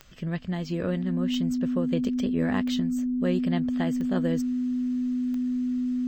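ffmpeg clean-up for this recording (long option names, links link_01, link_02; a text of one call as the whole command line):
ffmpeg -i in.wav -af "adeclick=threshold=4,bandreject=frequency=250:width=30" out.wav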